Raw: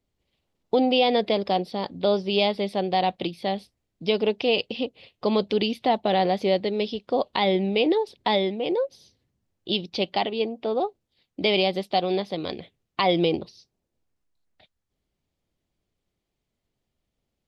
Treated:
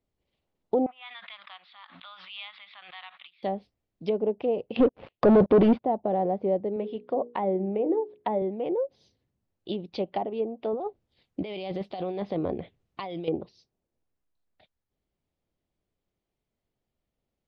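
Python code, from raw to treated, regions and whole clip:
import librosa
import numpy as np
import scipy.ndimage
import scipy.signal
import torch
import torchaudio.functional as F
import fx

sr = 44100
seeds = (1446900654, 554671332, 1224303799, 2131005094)

y = fx.chain(x, sr, fx.ellip_bandpass(low_hz=1200.0, high_hz=3700.0, order=3, stop_db=50),
    fx.high_shelf(hz=2500.0, db=-11.0),
    fx.pre_swell(db_per_s=54.0), at=(0.86, 3.43))
y = fx.chain(y, sr, fx.leveller(passes=5),
    fx.lowpass(hz=5100.0, slope=24),
    fx.high_shelf(hz=2600.0, db=10.5), at=(4.76, 5.84))
y = fx.chain(y, sr, fx.bandpass_edges(low_hz=120.0, high_hz=2900.0),
    fx.air_absorb(metres=76.0),
    fx.hum_notches(base_hz=60, count=8), at=(6.76, 8.42))
y = fx.chain(y, sr, fx.peak_eq(hz=61.0, db=5.5, octaves=2.2),
    fx.over_compress(threshold_db=-29.0, ratio=-1.0), at=(10.73, 13.28))
y = fx.peak_eq(y, sr, hz=630.0, db=2.5, octaves=2.0)
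y = fx.env_lowpass_down(y, sr, base_hz=780.0, full_db=-19.0)
y = fx.high_shelf(y, sr, hz=4600.0, db=-8.0)
y = y * 10.0 ** (-4.5 / 20.0)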